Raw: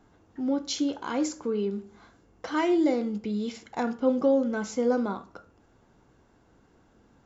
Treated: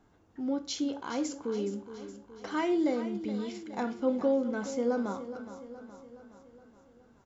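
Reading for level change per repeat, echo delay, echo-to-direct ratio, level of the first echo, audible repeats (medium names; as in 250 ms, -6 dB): -5.0 dB, 419 ms, -11.0 dB, -12.5 dB, 5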